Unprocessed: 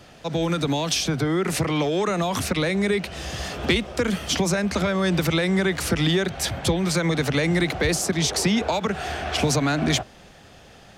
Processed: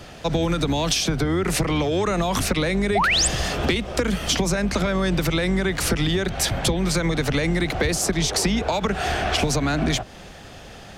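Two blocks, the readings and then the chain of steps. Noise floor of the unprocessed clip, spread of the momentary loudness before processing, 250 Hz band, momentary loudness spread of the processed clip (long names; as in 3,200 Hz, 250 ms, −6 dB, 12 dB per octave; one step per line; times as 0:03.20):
−48 dBFS, 5 LU, 0.0 dB, 3 LU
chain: sub-octave generator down 2 octaves, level −5 dB
downward compressor, threshold −25 dBFS, peak gain reduction 9.5 dB
sound drawn into the spectrogram rise, 0:02.95–0:03.28, 600–9,200 Hz −26 dBFS
level +6.5 dB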